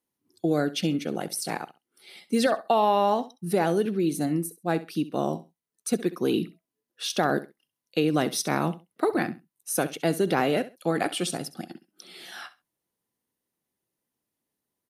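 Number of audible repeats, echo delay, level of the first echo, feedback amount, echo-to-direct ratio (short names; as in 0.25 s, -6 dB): 2, 66 ms, -16.0 dB, 20%, -16.0 dB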